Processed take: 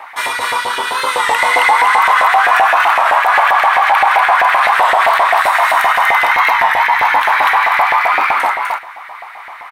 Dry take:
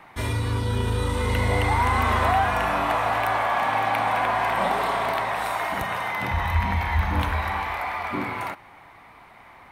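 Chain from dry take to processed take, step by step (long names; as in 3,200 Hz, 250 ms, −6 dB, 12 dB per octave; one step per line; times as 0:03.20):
single-tap delay 241 ms −3 dB
auto-filter high-pass saw up 7.7 Hz 650–1,900 Hz
boost into a limiter +13 dB
wow of a warped record 33 1/3 rpm, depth 100 cents
level −1 dB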